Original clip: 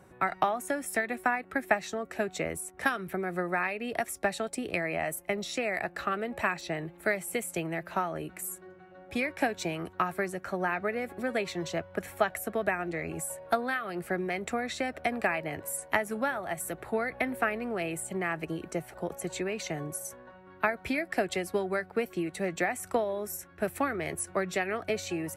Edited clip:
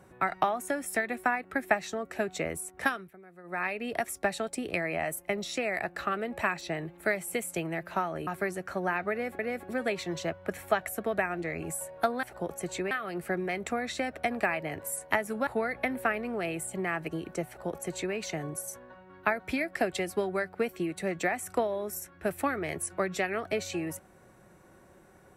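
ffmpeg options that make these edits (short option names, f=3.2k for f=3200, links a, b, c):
-filter_complex "[0:a]asplit=8[a][b][c][d][e][f][g][h];[a]atrim=end=3.11,asetpts=PTS-STARTPTS,afade=t=out:st=2.87:d=0.24:silence=0.105925[i];[b]atrim=start=3.11:end=3.43,asetpts=PTS-STARTPTS,volume=-19.5dB[j];[c]atrim=start=3.43:end=8.272,asetpts=PTS-STARTPTS,afade=t=in:d=0.24:silence=0.105925[k];[d]atrim=start=10.038:end=11.162[l];[e]atrim=start=10.878:end=13.722[m];[f]atrim=start=18.838:end=19.522[n];[g]atrim=start=13.718:end=16.282[o];[h]atrim=start=16.838[p];[i][j][k]concat=n=3:v=0:a=1[q];[q][l]acrossfade=d=0.004:c1=hsin:c2=hsin[r];[r][m]acrossfade=d=0.004:c1=hsin:c2=hsin[s];[s][n]acrossfade=d=0.004:c1=hsin:c2=hsin[t];[t][o]acrossfade=d=0.004:c1=hsin:c2=hsin[u];[u][p]acrossfade=d=0.004:c1=hsin:c2=hsin"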